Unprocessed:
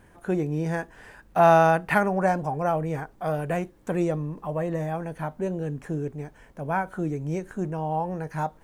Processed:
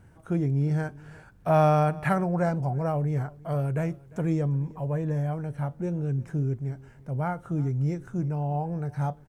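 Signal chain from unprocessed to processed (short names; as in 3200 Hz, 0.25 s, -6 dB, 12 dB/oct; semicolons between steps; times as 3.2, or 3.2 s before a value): bell 120 Hz +13.5 dB 1.3 oct; varispeed -7%; on a send: echo 0.35 s -22.5 dB; on the sum: gain -5.5 dB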